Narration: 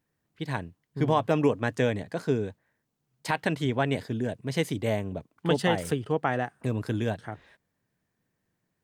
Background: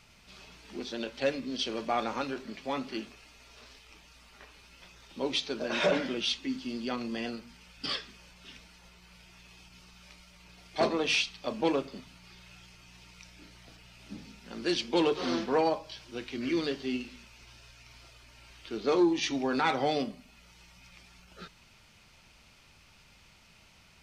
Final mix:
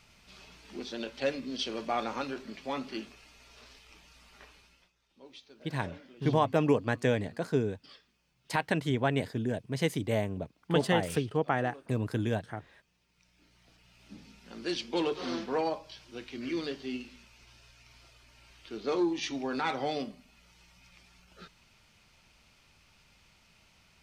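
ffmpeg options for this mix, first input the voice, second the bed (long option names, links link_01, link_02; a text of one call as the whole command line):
ffmpeg -i stem1.wav -i stem2.wav -filter_complex "[0:a]adelay=5250,volume=-2dB[link_01];[1:a]volume=15.5dB,afade=type=out:start_time=4.47:duration=0.44:silence=0.105925,afade=type=in:start_time=13.09:duration=1.31:silence=0.141254[link_02];[link_01][link_02]amix=inputs=2:normalize=0" out.wav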